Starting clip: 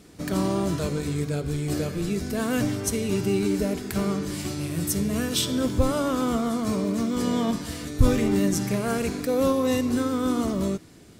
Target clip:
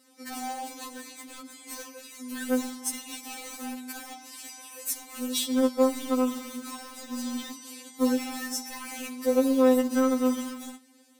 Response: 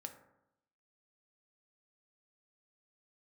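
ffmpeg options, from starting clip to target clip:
-filter_complex "[0:a]highpass=f=260:w=0.5412,highpass=f=260:w=1.3066,highshelf=f=7.6k:g=5.5,asplit=2[a][b];[b]acrusher=bits=3:mix=0:aa=0.000001,volume=-8.5dB[c];[a][c]amix=inputs=2:normalize=0,afftfilt=real='re*3.46*eq(mod(b,12),0)':imag='im*3.46*eq(mod(b,12),0)':win_size=2048:overlap=0.75,volume=-5dB"

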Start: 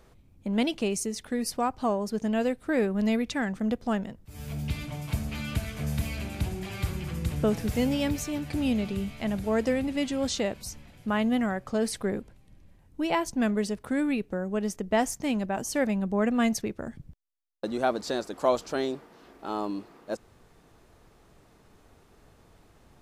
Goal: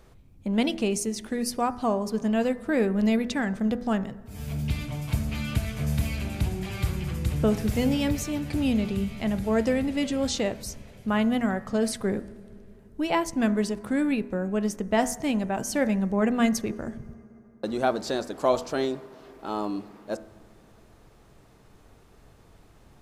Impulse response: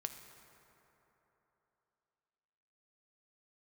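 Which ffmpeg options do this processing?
-filter_complex "[0:a]bandreject=f=81.71:t=h:w=4,bandreject=f=163.42:t=h:w=4,bandreject=f=245.13:t=h:w=4,bandreject=f=326.84:t=h:w=4,bandreject=f=408.55:t=h:w=4,bandreject=f=490.26:t=h:w=4,bandreject=f=571.97:t=h:w=4,bandreject=f=653.68:t=h:w=4,bandreject=f=735.39:t=h:w=4,bandreject=f=817.1:t=h:w=4,bandreject=f=898.81:t=h:w=4,bandreject=f=980.52:t=h:w=4,bandreject=f=1.06223k:t=h:w=4,bandreject=f=1.14394k:t=h:w=4,bandreject=f=1.22565k:t=h:w=4,bandreject=f=1.30736k:t=h:w=4,bandreject=f=1.38907k:t=h:w=4,bandreject=f=1.47078k:t=h:w=4,bandreject=f=1.55249k:t=h:w=4,bandreject=f=1.6342k:t=h:w=4,bandreject=f=1.71591k:t=h:w=4,bandreject=f=1.79762k:t=h:w=4,bandreject=f=1.87933k:t=h:w=4,bandreject=f=1.96104k:t=h:w=4,bandreject=f=2.04275k:t=h:w=4,asplit=2[a][b];[1:a]atrim=start_sample=2205,lowshelf=f=280:g=10.5[c];[b][c]afir=irnorm=-1:irlink=0,volume=-11.5dB[d];[a][d]amix=inputs=2:normalize=0"

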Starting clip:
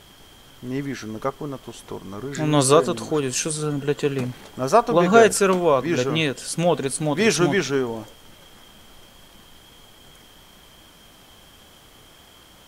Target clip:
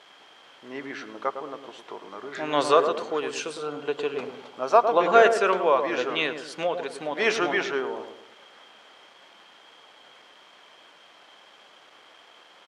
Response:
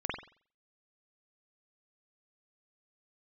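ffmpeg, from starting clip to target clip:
-filter_complex "[0:a]asettb=1/sr,asplit=3[a][b][c];[a]atrim=end=3.364[d];[b]atrim=start=3.36:end=5.12,asetpts=PTS-STARTPTS,afade=t=in:d=0.004:c=qsin,afade=t=out:st=1.756:d=0.004:c=qsin,equalizer=f=1.8k:t=o:w=0.29:g=-8[e];[c]atrim=start=5.116[f];[d][e]acrossfade=d=0.004:c1=hsin:c2=qsin[g];[g][f]acrossfade=d=0.004:c1=qsin:c2=hsin,asettb=1/sr,asplit=3[h][i][j];[h]atrim=end=6.664[k];[i]atrim=start=6.66:end=7.2,asetpts=PTS-STARTPTS,afade=t=in:d=0.004:c=qsin,afade=t=out:st=0.536:d=0.004:c=qsin,acompressor=threshold=-21dB:ratio=3[l];[j]atrim=start=7.196[m];[k][l]acrossfade=d=0.004:c1=hsin:c2=qsin[n];[n][m]acrossfade=d=0.004:c1=qsin:c2=hsin,acrusher=bits=7:mix=0:aa=0.000001,highpass=550,lowpass=3.2k,asplit=2[o][p];[p]adelay=107,lowpass=f=850:p=1,volume=-6dB,asplit=2[q][r];[r]adelay=107,lowpass=f=850:p=1,volume=0.46,asplit=2[s][t];[t]adelay=107,lowpass=f=850:p=1,volume=0.46,asplit=2[u][v];[v]adelay=107,lowpass=f=850:p=1,volume=0.46,asplit=2[w][x];[x]adelay=107,lowpass=f=850:p=1,volume=0.46,asplit=2[y][z];[z]adelay=107,lowpass=f=850:p=1,volume=0.46[aa];[o][q][s][u][w][y][aa]amix=inputs=7:normalize=0"

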